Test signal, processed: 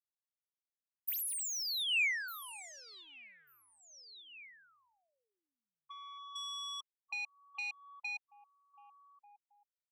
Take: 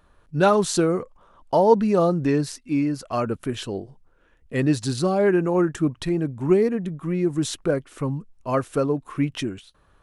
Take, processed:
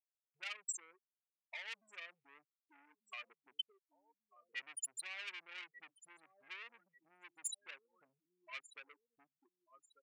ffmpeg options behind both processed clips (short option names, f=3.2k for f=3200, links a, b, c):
-filter_complex "[0:a]aemphasis=mode=production:type=75fm,acrossover=split=4000[a][b];[b]acrusher=bits=4:mix=0:aa=0.000001[c];[a][c]amix=inputs=2:normalize=0,dynaudnorm=f=160:g=21:m=6.5dB,afftfilt=real='re*gte(hypot(re,im),0.398)':imag='im*gte(hypot(re,im),0.398)':win_size=1024:overlap=0.75,asplit=2[d][e];[e]adelay=1191,lowpass=f=4.1k:p=1,volume=-22.5dB,asplit=2[f][g];[g]adelay=1191,lowpass=f=4.1k:p=1,volume=0.33[h];[d][f][h]amix=inputs=3:normalize=0,asoftclip=type=tanh:threshold=-21.5dB,highshelf=f=5.3k:g=11,acompressor=threshold=-34dB:ratio=8,highpass=f=2.4k:t=q:w=3.1,volume=-4.5dB"